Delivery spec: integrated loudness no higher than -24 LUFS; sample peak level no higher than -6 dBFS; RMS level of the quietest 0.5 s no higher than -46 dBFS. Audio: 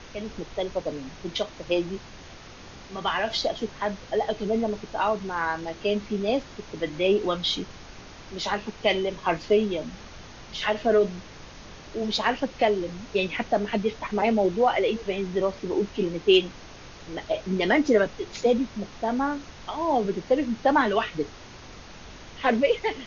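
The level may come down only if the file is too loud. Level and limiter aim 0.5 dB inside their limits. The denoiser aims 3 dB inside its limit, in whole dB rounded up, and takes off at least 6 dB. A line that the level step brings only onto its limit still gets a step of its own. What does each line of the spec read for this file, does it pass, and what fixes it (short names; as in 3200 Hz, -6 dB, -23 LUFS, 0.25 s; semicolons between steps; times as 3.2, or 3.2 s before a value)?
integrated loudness -26.0 LUFS: OK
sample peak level -8.0 dBFS: OK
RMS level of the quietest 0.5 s -44 dBFS: fail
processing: denoiser 6 dB, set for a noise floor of -44 dBFS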